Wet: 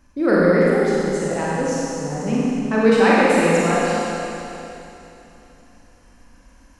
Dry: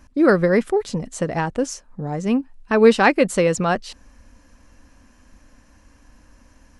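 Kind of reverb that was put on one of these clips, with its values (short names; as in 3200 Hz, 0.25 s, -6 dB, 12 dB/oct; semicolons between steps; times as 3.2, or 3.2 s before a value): Schroeder reverb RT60 3.1 s, combs from 32 ms, DRR -7 dB; gain -6 dB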